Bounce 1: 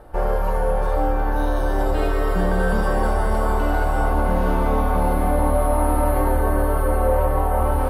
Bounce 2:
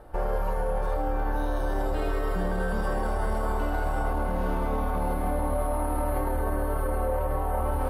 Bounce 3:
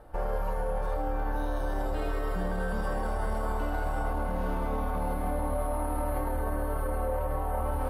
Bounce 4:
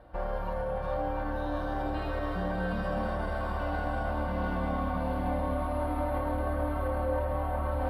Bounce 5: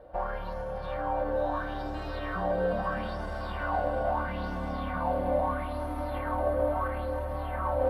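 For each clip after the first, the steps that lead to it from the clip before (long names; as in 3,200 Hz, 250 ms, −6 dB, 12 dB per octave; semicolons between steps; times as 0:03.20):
brickwall limiter −15 dBFS, peak gain reduction 7 dB; level −4 dB
notch filter 380 Hz, Q 12; level −3 dB
high shelf with overshoot 5,400 Hz −10 dB, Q 1.5; notch comb filter 430 Hz; echo with a time of its own for lows and highs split 570 Hz, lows 233 ms, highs 694 ms, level −5 dB
auto-filter bell 0.76 Hz 490–6,500 Hz +13 dB; level −3 dB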